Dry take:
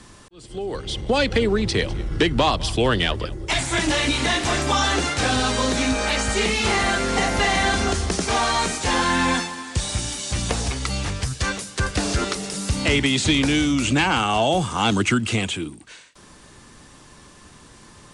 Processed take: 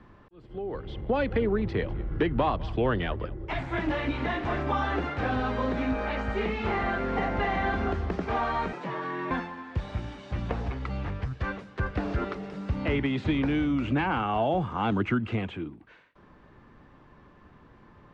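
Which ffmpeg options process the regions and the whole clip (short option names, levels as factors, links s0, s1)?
-filter_complex "[0:a]asettb=1/sr,asplit=3[s0][s1][s2];[s0]atrim=end=8.734[s3];[s1]atrim=start=8.73:end=9.31,asetpts=PTS-STARTPTS,afade=t=in:d=0.004:c=qsin,afade=t=out:st=0.576:d=0.004:c=qsin,acompressor=threshold=0.0708:ratio=4:attack=3.2:release=140:knee=1:detection=peak,aeval=exprs='val(0)+0.00562*sin(2*PI*5500*n/s)':c=same,afreqshift=97[s4];[s2]atrim=start=9.306[s5];[s3][s4]acrossfade=d=0.004:c1=hsin:c2=qsin[s6];[s6][s5]acrossfade=d=0.004:c1=qsin:c2=hsin,lowpass=1900,aemphasis=mode=reproduction:type=50fm,volume=0.501"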